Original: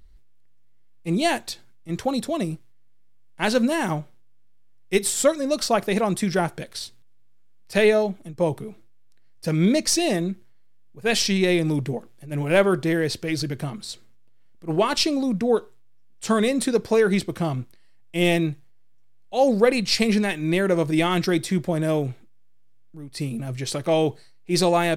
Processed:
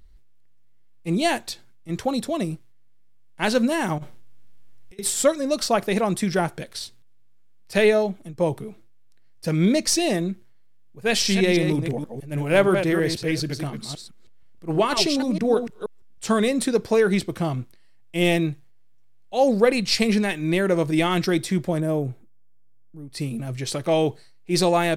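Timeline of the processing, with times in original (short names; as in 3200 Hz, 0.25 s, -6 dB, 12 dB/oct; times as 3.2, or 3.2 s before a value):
3.98–4.99 negative-ratio compressor -39 dBFS
11.09–16.3 reverse delay 0.159 s, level -7 dB
21.8–23.1 bell 3300 Hz -12 dB 2.5 oct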